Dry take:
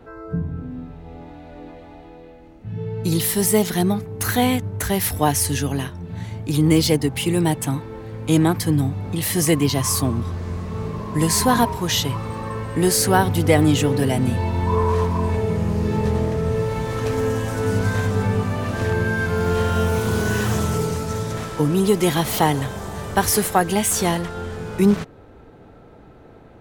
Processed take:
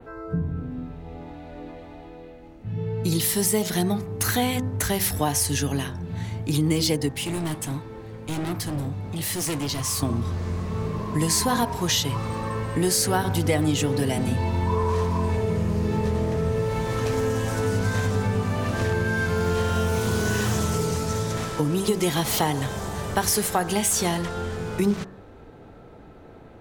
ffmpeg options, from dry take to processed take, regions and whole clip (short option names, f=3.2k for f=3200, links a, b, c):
-filter_complex "[0:a]asettb=1/sr,asplit=3[a][b][c];[a]atrim=end=7.124[d];[b]atrim=start=7.12:end=10.03,asetpts=PTS-STARTPTS,afade=t=in:d=0.004:c=qsin,afade=t=out:st=2.906:d=0.004:c=qsin,asoftclip=type=hard:threshold=-20.5dB,flanger=delay=6.5:depth=7.4:regen=-79:speed=1.4:shape=sinusoidal[e];[c]atrim=start=10.026[f];[d][e]acrossfade=d=0.004:c1=hsin:c2=qsin[g];[g][f]acrossfade=d=0.004:c1=qsin:c2=hsin,bandreject=f=63.85:t=h:w=4,bandreject=f=127.7:t=h:w=4,bandreject=f=191.55:t=h:w=4,bandreject=f=255.4:t=h:w=4,bandreject=f=319.25:t=h:w=4,bandreject=f=383.1:t=h:w=4,bandreject=f=446.95:t=h:w=4,bandreject=f=510.8:t=h:w=4,bandreject=f=574.65:t=h:w=4,bandreject=f=638.5:t=h:w=4,bandreject=f=702.35:t=h:w=4,bandreject=f=766.2:t=h:w=4,bandreject=f=830.05:t=h:w=4,bandreject=f=893.9:t=h:w=4,bandreject=f=957.75:t=h:w=4,bandreject=f=1.0216k:t=h:w=4,bandreject=f=1.08545k:t=h:w=4,bandreject=f=1.1493k:t=h:w=4,bandreject=f=1.21315k:t=h:w=4,bandreject=f=1.277k:t=h:w=4,bandreject=f=1.34085k:t=h:w=4,bandreject=f=1.4047k:t=h:w=4,bandreject=f=1.46855k:t=h:w=4,bandreject=f=1.5324k:t=h:w=4,bandreject=f=1.59625k:t=h:w=4,bandreject=f=1.6601k:t=h:w=4,bandreject=f=1.72395k:t=h:w=4,bandreject=f=1.7878k:t=h:w=4,bandreject=f=1.85165k:t=h:w=4,adynamicequalizer=threshold=0.0112:dfrequency=5800:dqfactor=0.78:tfrequency=5800:tqfactor=0.78:attack=5:release=100:ratio=0.375:range=2:mode=boostabove:tftype=bell,acompressor=threshold=-21dB:ratio=2.5"